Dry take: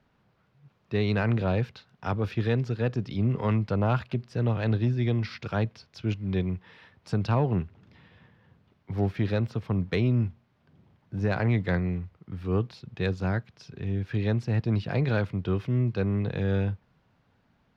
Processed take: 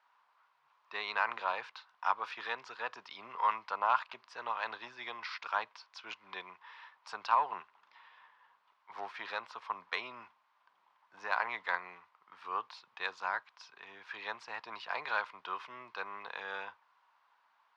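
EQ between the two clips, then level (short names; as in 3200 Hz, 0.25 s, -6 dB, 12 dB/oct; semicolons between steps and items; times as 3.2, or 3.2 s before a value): resonant high-pass 1000 Hz, resonance Q 4.9; air absorption 82 m; tilt +2 dB/oct; -4.5 dB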